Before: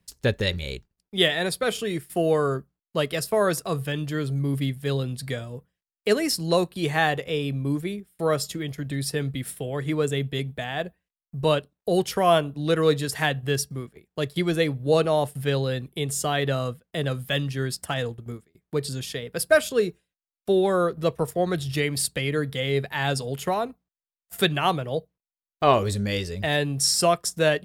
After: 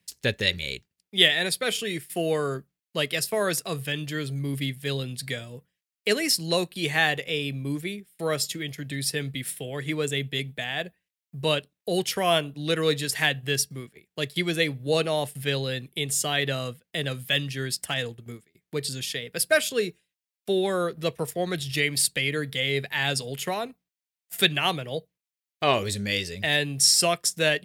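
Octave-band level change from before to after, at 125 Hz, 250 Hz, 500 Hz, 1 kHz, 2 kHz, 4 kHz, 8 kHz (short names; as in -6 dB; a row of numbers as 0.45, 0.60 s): -4.5, -4.0, -4.0, -4.5, +2.5, +4.0, +3.0 dB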